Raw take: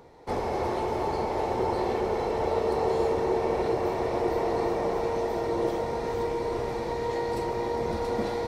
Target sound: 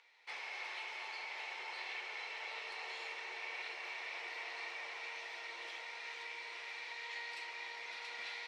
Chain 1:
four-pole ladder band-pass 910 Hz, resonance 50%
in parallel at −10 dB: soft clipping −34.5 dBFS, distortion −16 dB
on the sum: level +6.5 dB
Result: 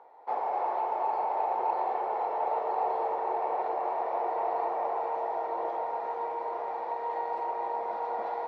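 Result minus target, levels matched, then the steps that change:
2,000 Hz band −19.5 dB
change: four-pole ladder band-pass 2,800 Hz, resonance 50%

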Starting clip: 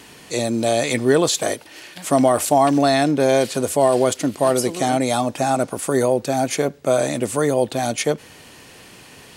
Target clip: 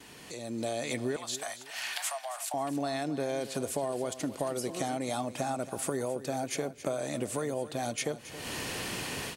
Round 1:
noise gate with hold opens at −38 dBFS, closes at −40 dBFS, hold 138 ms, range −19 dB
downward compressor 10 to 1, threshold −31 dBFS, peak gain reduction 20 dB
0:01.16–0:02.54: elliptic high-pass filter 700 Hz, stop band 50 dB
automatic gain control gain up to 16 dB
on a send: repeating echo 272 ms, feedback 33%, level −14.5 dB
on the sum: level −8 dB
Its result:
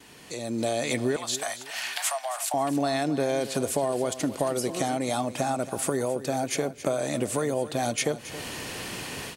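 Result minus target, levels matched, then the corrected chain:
downward compressor: peak gain reduction −7 dB
noise gate with hold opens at −38 dBFS, closes at −40 dBFS, hold 138 ms, range −19 dB
downward compressor 10 to 1, threshold −38.5 dBFS, peak gain reduction 27 dB
0:01.16–0:02.54: elliptic high-pass filter 700 Hz, stop band 50 dB
automatic gain control gain up to 16 dB
on a send: repeating echo 272 ms, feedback 33%, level −14.5 dB
on the sum: level −8 dB

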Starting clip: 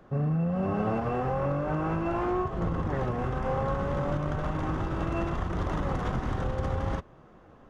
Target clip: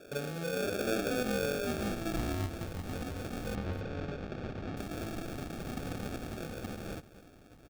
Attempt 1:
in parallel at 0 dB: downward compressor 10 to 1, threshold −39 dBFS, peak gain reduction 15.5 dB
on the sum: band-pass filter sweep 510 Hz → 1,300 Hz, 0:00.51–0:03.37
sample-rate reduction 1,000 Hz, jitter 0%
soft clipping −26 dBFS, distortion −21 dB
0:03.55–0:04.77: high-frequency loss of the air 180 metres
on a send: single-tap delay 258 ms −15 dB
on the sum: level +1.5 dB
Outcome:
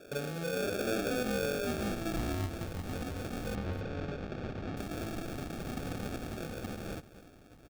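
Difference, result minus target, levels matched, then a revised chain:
soft clipping: distortion +14 dB; downward compressor: peak gain reduction −6.5 dB
in parallel at 0 dB: downward compressor 10 to 1, threshold −46 dBFS, peak gain reduction 21.5 dB
on the sum: band-pass filter sweep 510 Hz → 1,300 Hz, 0:00.51–0:03.37
sample-rate reduction 1,000 Hz, jitter 0%
soft clipping −18.5 dBFS, distortion −35 dB
0:03.55–0:04.77: high-frequency loss of the air 180 metres
on a send: single-tap delay 258 ms −15 dB
on the sum: level +1.5 dB

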